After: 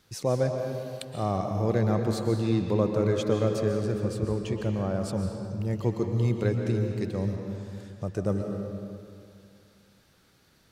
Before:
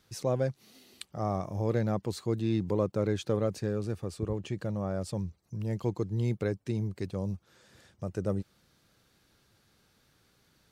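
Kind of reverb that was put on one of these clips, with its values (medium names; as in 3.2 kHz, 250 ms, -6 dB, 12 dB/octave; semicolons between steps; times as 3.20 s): algorithmic reverb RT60 2.4 s, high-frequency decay 0.75×, pre-delay 95 ms, DRR 3.5 dB; trim +3 dB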